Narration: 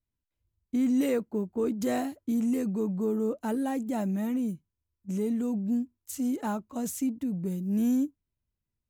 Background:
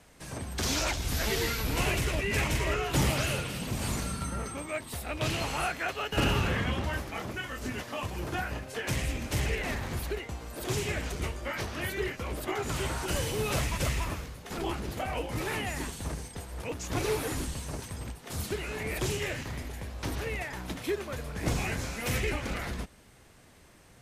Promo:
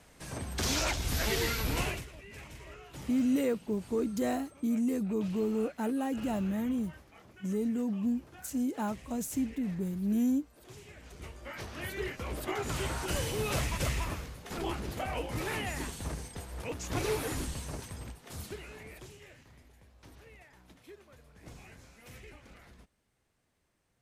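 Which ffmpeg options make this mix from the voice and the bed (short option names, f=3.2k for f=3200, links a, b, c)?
-filter_complex "[0:a]adelay=2350,volume=-2.5dB[a];[1:a]volume=16.5dB,afade=t=out:st=1.72:d=0.35:silence=0.11885,afade=t=in:st=10.97:d=1.39:silence=0.133352,afade=t=out:st=17.59:d=1.51:silence=0.11885[b];[a][b]amix=inputs=2:normalize=0"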